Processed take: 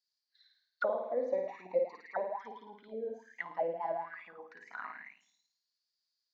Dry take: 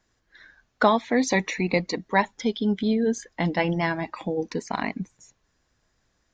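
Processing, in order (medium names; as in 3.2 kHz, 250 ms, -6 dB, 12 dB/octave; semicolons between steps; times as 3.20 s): flutter echo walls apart 9.3 m, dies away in 0.85 s; auto-wah 540–4600 Hz, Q 13, down, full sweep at -17 dBFS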